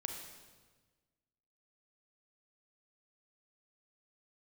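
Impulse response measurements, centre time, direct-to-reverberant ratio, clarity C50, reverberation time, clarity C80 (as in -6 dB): 44 ms, 3.0 dB, 4.5 dB, 1.4 s, 6.0 dB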